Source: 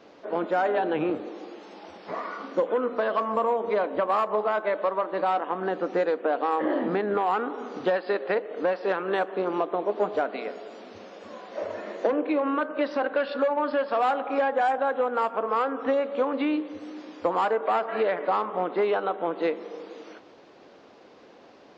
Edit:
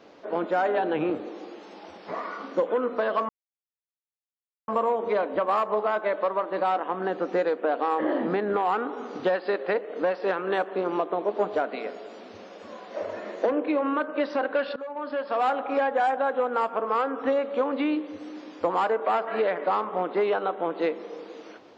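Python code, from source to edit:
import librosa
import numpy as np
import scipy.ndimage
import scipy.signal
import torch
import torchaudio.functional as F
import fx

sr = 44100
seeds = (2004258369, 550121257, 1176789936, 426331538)

y = fx.edit(x, sr, fx.insert_silence(at_s=3.29, length_s=1.39),
    fx.fade_in_from(start_s=13.37, length_s=0.73, floor_db=-17.0), tone=tone)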